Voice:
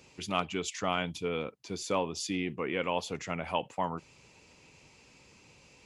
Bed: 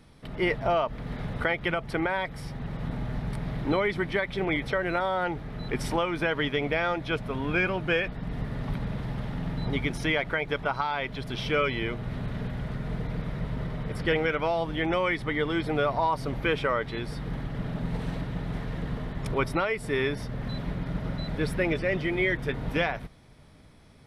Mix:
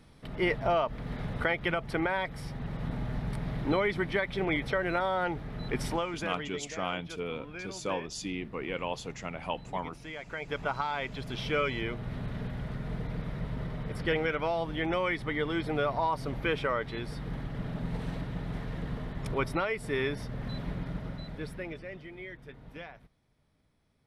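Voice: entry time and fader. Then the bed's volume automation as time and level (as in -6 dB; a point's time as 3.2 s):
5.95 s, -3.0 dB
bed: 5.83 s -2 dB
6.71 s -16.5 dB
10.1 s -16.5 dB
10.61 s -3.5 dB
20.8 s -3.5 dB
22.11 s -18 dB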